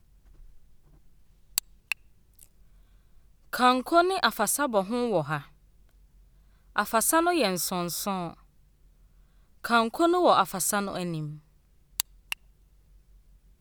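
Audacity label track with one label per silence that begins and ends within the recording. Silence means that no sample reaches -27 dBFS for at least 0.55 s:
1.920000	3.530000	silence
5.380000	6.760000	silence
8.280000	9.650000	silence
11.240000	12.000000	silence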